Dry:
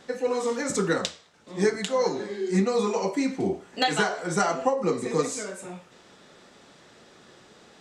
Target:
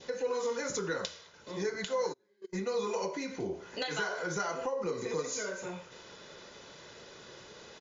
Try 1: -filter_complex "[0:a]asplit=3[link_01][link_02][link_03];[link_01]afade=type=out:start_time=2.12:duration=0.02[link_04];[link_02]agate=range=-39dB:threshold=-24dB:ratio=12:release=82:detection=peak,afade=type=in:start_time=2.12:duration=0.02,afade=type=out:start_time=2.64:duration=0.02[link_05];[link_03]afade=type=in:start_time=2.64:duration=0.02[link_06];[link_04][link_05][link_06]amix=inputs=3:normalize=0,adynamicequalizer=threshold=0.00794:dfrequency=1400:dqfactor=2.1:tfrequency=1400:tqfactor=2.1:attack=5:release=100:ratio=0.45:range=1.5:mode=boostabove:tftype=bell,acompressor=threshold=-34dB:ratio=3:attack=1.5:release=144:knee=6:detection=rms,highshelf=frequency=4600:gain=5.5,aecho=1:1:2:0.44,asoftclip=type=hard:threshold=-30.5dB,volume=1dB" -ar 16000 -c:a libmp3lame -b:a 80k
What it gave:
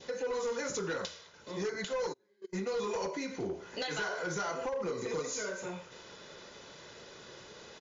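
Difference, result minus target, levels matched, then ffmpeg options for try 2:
hard clipping: distortion +32 dB
-filter_complex "[0:a]asplit=3[link_01][link_02][link_03];[link_01]afade=type=out:start_time=2.12:duration=0.02[link_04];[link_02]agate=range=-39dB:threshold=-24dB:ratio=12:release=82:detection=peak,afade=type=in:start_time=2.12:duration=0.02,afade=type=out:start_time=2.64:duration=0.02[link_05];[link_03]afade=type=in:start_time=2.64:duration=0.02[link_06];[link_04][link_05][link_06]amix=inputs=3:normalize=0,adynamicequalizer=threshold=0.00794:dfrequency=1400:dqfactor=2.1:tfrequency=1400:tqfactor=2.1:attack=5:release=100:ratio=0.45:range=1.5:mode=boostabove:tftype=bell,acompressor=threshold=-34dB:ratio=3:attack=1.5:release=144:knee=6:detection=rms,highshelf=frequency=4600:gain=5.5,aecho=1:1:2:0.44,asoftclip=type=hard:threshold=-20.5dB,volume=1dB" -ar 16000 -c:a libmp3lame -b:a 80k

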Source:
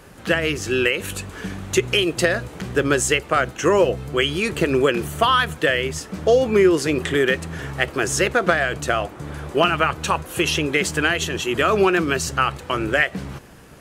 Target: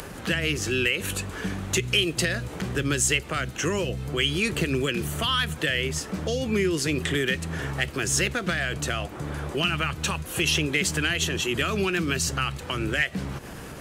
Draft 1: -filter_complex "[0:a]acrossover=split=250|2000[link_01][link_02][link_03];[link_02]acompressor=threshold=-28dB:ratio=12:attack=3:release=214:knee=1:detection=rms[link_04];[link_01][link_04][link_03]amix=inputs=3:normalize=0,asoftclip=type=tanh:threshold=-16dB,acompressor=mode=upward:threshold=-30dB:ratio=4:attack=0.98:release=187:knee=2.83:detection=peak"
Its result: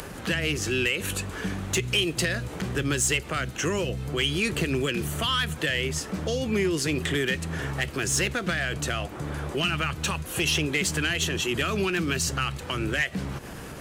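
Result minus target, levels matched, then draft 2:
soft clipping: distortion +10 dB
-filter_complex "[0:a]acrossover=split=250|2000[link_01][link_02][link_03];[link_02]acompressor=threshold=-28dB:ratio=12:attack=3:release=214:knee=1:detection=rms[link_04];[link_01][link_04][link_03]amix=inputs=3:normalize=0,asoftclip=type=tanh:threshold=-9dB,acompressor=mode=upward:threshold=-30dB:ratio=4:attack=0.98:release=187:knee=2.83:detection=peak"

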